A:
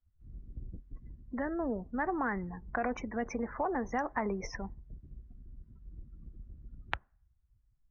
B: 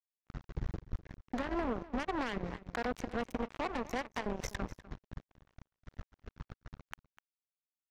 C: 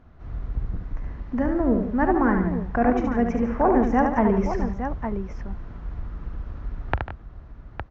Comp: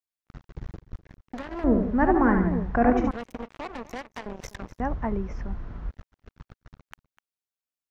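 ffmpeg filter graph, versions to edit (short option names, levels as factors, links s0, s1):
-filter_complex "[2:a]asplit=2[s0][s1];[1:a]asplit=3[s2][s3][s4];[s2]atrim=end=1.642[s5];[s0]atrim=start=1.638:end=3.112[s6];[s3]atrim=start=3.108:end=4.802[s7];[s1]atrim=start=4.798:end=5.912[s8];[s4]atrim=start=5.908[s9];[s5][s6]acrossfade=d=0.004:c1=hsin:c2=hsin[s10];[s10][s7]acrossfade=d=0.004:c1=hsin:c2=hsin[s11];[s11][s8]acrossfade=d=0.004:c1=hsin:c2=hsin[s12];[s12][s9]acrossfade=d=0.004:c1=hsin:c2=hsin"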